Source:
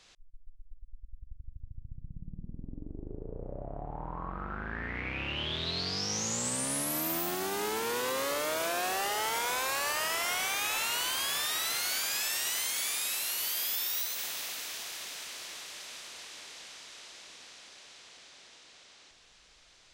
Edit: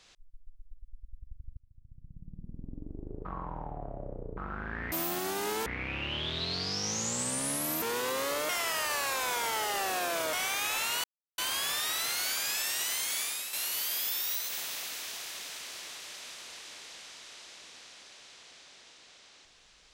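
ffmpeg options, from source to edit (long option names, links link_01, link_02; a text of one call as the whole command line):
ffmpeg -i in.wav -filter_complex "[0:a]asplit=11[link_01][link_02][link_03][link_04][link_05][link_06][link_07][link_08][link_09][link_10][link_11];[link_01]atrim=end=1.57,asetpts=PTS-STARTPTS,afade=type=out:start_time=1.566:duration=0.004:curve=hsin:silence=0.0630957[link_12];[link_02]atrim=start=1.57:end=3.252,asetpts=PTS-STARTPTS,afade=type=in:duration=1.1:silence=0.0630957[link_13];[link_03]atrim=start=3.248:end=4.372,asetpts=PTS-STARTPTS,areverse[link_14];[link_04]atrim=start=4.368:end=4.922[link_15];[link_05]atrim=start=7.078:end=7.822[link_16];[link_06]atrim=start=4.918:end=7.082[link_17];[link_07]atrim=start=7.818:end=8.492[link_18];[link_08]atrim=start=8.488:end=10.332,asetpts=PTS-STARTPTS,areverse[link_19];[link_09]atrim=start=10.328:end=11.04,asetpts=PTS-STARTPTS,afade=type=out:start_time=0.708:duration=0.004:curve=hsin,apad=pad_dur=0.34[link_20];[link_10]atrim=start=11.04:end=13.19,asetpts=PTS-STARTPTS,afade=type=in:duration=0.004:curve=hsin,afade=type=out:start_time=1.82:duration=0.33:silence=0.421697[link_21];[link_11]atrim=start=13.19,asetpts=PTS-STARTPTS,afade=type=in:duration=0.004:curve=hsin:silence=0.421697[link_22];[link_12][link_13]concat=n=2:v=0:a=1[link_23];[link_23][link_14]acrossfade=duration=0.004:curve1=hsin:curve2=hsin[link_24];[link_24][link_15]acrossfade=duration=0.004:curve1=hsin:curve2=hsin[link_25];[link_25][link_16]acrossfade=duration=0.004:curve1=hsin:curve2=hsin[link_26];[link_26][link_17]acrossfade=duration=0.004:curve1=hsin:curve2=hsin[link_27];[link_27][link_18]acrossfade=duration=0.004:curve1=hsin:curve2=hsin[link_28];[link_28][link_19]acrossfade=duration=0.004:curve1=hsin:curve2=hsin[link_29];[link_20][link_21][link_22]concat=n=3:v=0:a=1[link_30];[link_29][link_30]acrossfade=duration=0.004:curve1=hsin:curve2=hsin" out.wav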